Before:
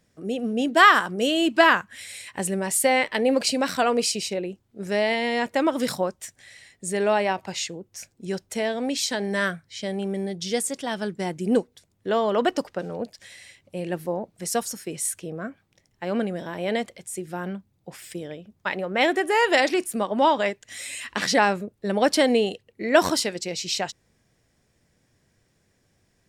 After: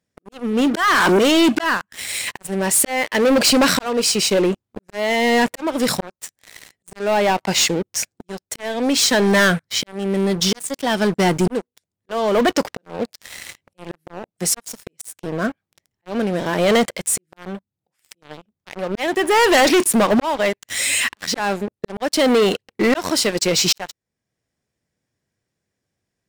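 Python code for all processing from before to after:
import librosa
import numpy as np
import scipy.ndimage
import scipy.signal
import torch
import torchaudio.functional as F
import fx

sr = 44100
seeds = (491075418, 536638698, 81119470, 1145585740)

y = fx.chain(x, sr, fx.steep_highpass(hz=210.0, slope=36),
    fx.env_flatten(amount_pct=70), at=(0.74, 1.19))
y = fx.highpass(y, sr, hz=72.0, slope=6)
y = fx.auto_swell(y, sr, attack_ms=734.0)
y = fx.leveller(y, sr, passes=5)
y = y * 10.0 ** (-1.5 / 20.0)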